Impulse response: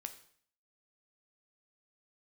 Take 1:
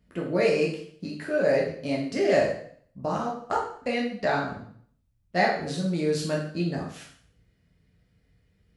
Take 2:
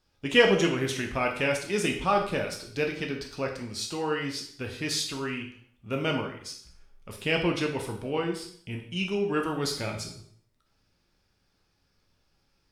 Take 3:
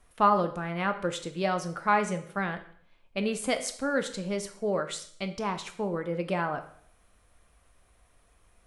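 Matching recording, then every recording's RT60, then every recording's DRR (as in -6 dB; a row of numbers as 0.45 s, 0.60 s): 3; 0.55 s, 0.55 s, 0.55 s; -3.5 dB, 1.0 dB, 7.0 dB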